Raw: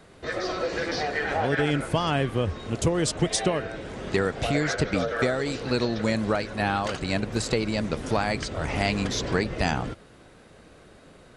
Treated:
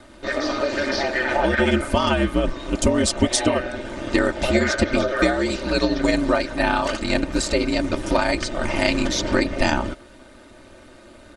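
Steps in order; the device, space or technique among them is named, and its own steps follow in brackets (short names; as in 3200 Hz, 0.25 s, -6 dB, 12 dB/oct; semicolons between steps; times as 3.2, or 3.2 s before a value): ring-modulated robot voice (ring modulator 66 Hz; comb 3.3 ms, depth 74%); gain +6.5 dB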